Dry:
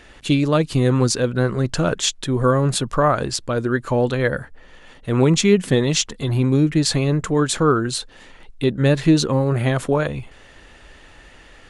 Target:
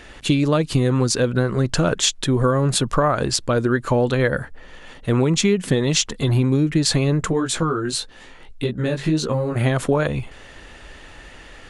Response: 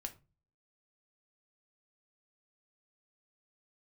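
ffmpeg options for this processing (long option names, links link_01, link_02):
-filter_complex "[0:a]acompressor=threshold=-18dB:ratio=6,asplit=3[link_01][link_02][link_03];[link_01]afade=type=out:start_time=7.31:duration=0.02[link_04];[link_02]flanger=delay=16.5:depth=3.5:speed=1.6,afade=type=in:start_time=7.31:duration=0.02,afade=type=out:start_time=9.55:duration=0.02[link_05];[link_03]afade=type=in:start_time=9.55:duration=0.02[link_06];[link_04][link_05][link_06]amix=inputs=3:normalize=0,volume=4dB"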